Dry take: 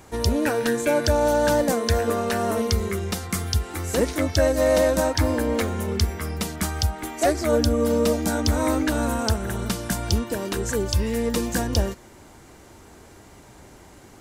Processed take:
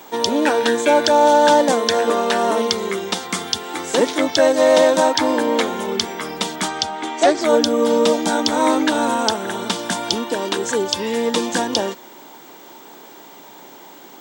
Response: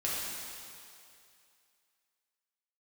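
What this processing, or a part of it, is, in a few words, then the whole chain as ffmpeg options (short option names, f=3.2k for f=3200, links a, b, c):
old television with a line whistle: -filter_complex "[0:a]highpass=f=200:w=0.5412,highpass=f=200:w=1.3066,equalizer=f=210:t=q:w=4:g=-4,equalizer=f=900:t=q:w=4:g=7,equalizer=f=3.4k:t=q:w=4:g=9,lowpass=f=8.5k:w=0.5412,lowpass=f=8.5k:w=1.3066,aeval=exprs='val(0)+0.00316*sin(2*PI*15734*n/s)':c=same,asettb=1/sr,asplit=3[a][b][c];[a]atrim=end=6.684[d];[b]atrim=start=6.68:end=7.41,asetpts=PTS-STARTPTS,afade=t=in:d=0.004:c=qsin,afade=t=out:st=0.726:d=0.004:c=qsin,lowpass=7.5k[e];[c]atrim=start=7.406[f];[d][e]acrossfade=d=0.004:c1=hsin:c2=qsin[g];[g][f]acrossfade=d=0.004:c1=qsin:c2=hsin,volume=5.5dB"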